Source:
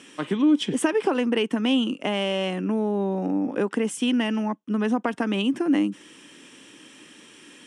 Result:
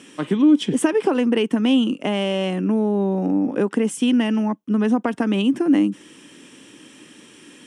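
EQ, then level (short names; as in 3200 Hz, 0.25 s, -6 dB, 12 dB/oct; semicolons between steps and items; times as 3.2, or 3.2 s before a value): low shelf 490 Hz +6.5 dB; high shelf 8800 Hz +5.5 dB; 0.0 dB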